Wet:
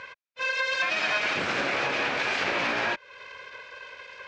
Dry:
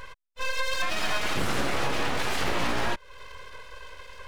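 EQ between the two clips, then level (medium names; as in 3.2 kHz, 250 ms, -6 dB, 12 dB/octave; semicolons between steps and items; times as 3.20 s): distance through air 180 m; tone controls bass -6 dB, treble +10 dB; cabinet simulation 120–7800 Hz, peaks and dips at 590 Hz +3 dB, 1.6 kHz +6 dB, 2.4 kHz +9 dB; 0.0 dB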